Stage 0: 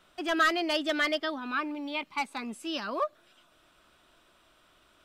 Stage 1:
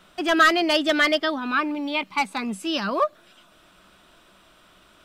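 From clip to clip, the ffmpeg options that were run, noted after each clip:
-af "equalizer=f=190:w=7.5:g=11.5,volume=2.51"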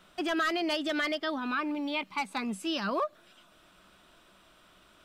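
-af "alimiter=limit=0.15:level=0:latency=1:release=113,volume=0.562"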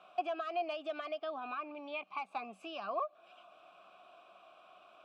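-filter_complex "[0:a]acompressor=threshold=0.01:ratio=3,asplit=3[s0][s1][s2];[s0]bandpass=f=730:t=q:w=8,volume=1[s3];[s1]bandpass=f=1090:t=q:w=8,volume=0.501[s4];[s2]bandpass=f=2440:t=q:w=8,volume=0.355[s5];[s3][s4][s5]amix=inputs=3:normalize=0,volume=3.98"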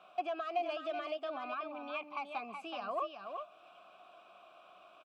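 -filter_complex "[0:a]asoftclip=type=tanh:threshold=0.0668,asplit=2[s0][s1];[s1]aecho=0:1:374:0.473[s2];[s0][s2]amix=inputs=2:normalize=0"

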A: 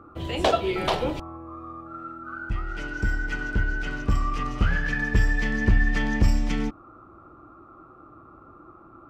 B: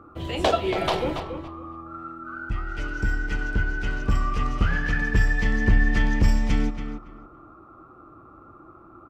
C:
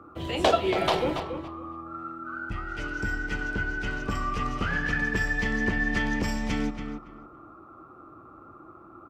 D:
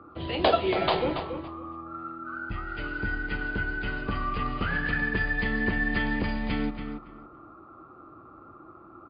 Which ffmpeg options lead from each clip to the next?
-filter_complex "[0:a]asplit=2[s0][s1];[s1]adelay=280,lowpass=f=2900:p=1,volume=0.398,asplit=2[s2][s3];[s3]adelay=280,lowpass=f=2900:p=1,volume=0.2,asplit=2[s4][s5];[s5]adelay=280,lowpass=f=2900:p=1,volume=0.2[s6];[s0][s2][s4][s6]amix=inputs=4:normalize=0"
-filter_complex "[0:a]lowshelf=f=61:g=-11,acrossover=split=210|2000[s0][s1][s2];[s0]alimiter=level_in=1.26:limit=0.0631:level=0:latency=1,volume=0.794[s3];[s3][s1][s2]amix=inputs=3:normalize=0"
-ar 11025 -c:a libmp3lame -b:a 48k

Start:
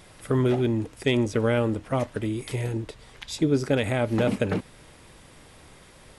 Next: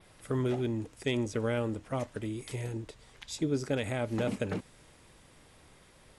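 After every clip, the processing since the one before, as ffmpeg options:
-af "adynamicequalizer=threshold=0.00178:dfrequency=7100:dqfactor=1.4:tfrequency=7100:tqfactor=1.4:attack=5:release=100:ratio=0.375:range=2.5:mode=boostabove:tftype=bell,volume=0.398"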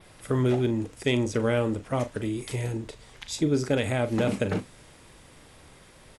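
-filter_complex "[0:a]asplit=2[s0][s1];[s1]adelay=40,volume=0.251[s2];[s0][s2]amix=inputs=2:normalize=0,volume=2"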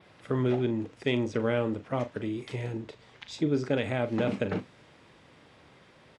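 -af "highpass=110,lowpass=4000,volume=0.75"

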